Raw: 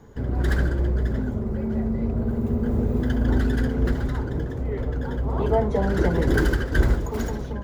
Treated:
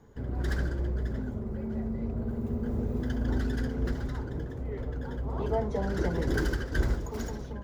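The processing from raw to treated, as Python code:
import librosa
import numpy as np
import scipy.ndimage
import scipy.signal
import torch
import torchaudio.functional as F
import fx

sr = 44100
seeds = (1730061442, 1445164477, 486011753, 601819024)

y = fx.dynamic_eq(x, sr, hz=5500.0, q=1.9, threshold_db=-56.0, ratio=4.0, max_db=6)
y = y * librosa.db_to_amplitude(-8.0)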